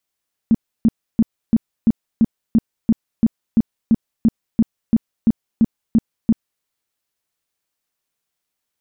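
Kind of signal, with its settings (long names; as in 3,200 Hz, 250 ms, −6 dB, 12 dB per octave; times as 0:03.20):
tone bursts 226 Hz, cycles 8, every 0.34 s, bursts 18, −8.5 dBFS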